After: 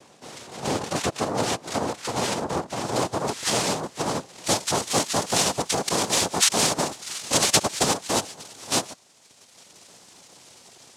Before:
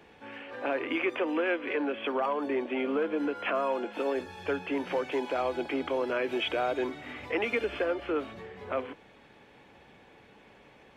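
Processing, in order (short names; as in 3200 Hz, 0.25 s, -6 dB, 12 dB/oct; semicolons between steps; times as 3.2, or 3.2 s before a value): reverb removal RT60 1.9 s; noise vocoder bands 2; high shelf 2500 Hz -2 dB, from 2.84 s +3.5 dB, from 4.44 s +11 dB; gain +5 dB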